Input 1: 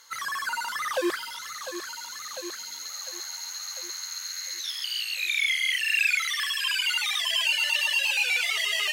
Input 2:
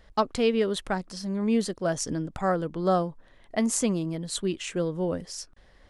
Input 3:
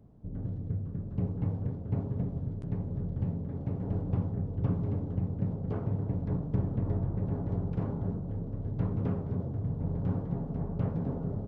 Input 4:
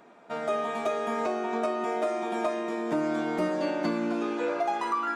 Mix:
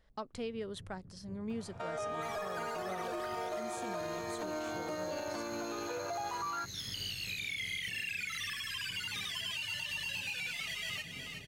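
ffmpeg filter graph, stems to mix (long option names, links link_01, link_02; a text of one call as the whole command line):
ffmpeg -i stem1.wav -i stem2.wav -i stem3.wav -i stem4.wav -filter_complex "[0:a]adelay=2100,volume=-9dB,asplit=2[link_01][link_02];[link_02]volume=-10.5dB[link_03];[1:a]volume=-13.5dB[link_04];[2:a]adelay=100,volume=-19.5dB[link_05];[3:a]highpass=420,bandreject=frequency=2000:width=14,alimiter=limit=-23.5dB:level=0:latency=1,adelay=1500,volume=0dB[link_06];[link_03]aecho=0:1:367|734|1101|1468|1835|2202:1|0.44|0.194|0.0852|0.0375|0.0165[link_07];[link_01][link_04][link_05][link_06][link_07]amix=inputs=5:normalize=0,alimiter=level_in=6dB:limit=-24dB:level=0:latency=1:release=170,volume=-6dB" out.wav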